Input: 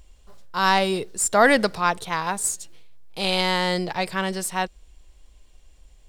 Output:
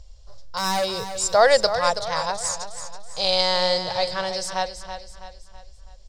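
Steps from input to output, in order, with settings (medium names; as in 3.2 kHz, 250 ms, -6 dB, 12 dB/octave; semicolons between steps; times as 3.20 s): FFT filter 120 Hz 0 dB, 270 Hz -28 dB, 540 Hz -1 dB, 910 Hz -7 dB, 2.7 kHz -12 dB, 5.1 kHz +5 dB, 12 kHz -23 dB; 0.57–1.08 s: hard clipper -25.5 dBFS, distortion -13 dB; feedback delay 327 ms, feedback 43%, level -10 dB; trim +6 dB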